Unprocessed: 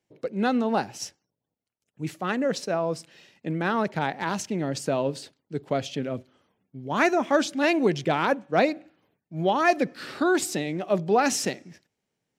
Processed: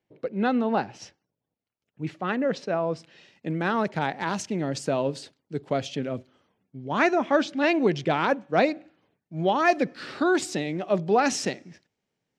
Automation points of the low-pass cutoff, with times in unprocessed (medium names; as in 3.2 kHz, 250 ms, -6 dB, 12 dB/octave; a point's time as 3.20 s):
2.88 s 3.5 kHz
3.51 s 8.7 kHz
6.16 s 8.7 kHz
7.43 s 4 kHz
8.27 s 6.7 kHz